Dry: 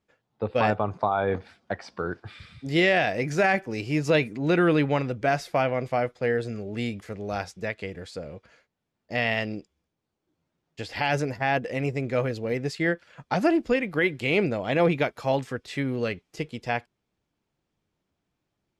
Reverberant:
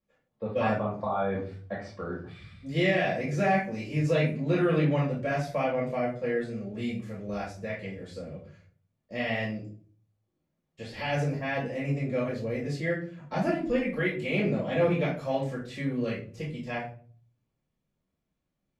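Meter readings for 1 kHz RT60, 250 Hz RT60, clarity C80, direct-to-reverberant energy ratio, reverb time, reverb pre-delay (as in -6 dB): 0.40 s, 0.65 s, 11.5 dB, -6.0 dB, 0.45 s, 4 ms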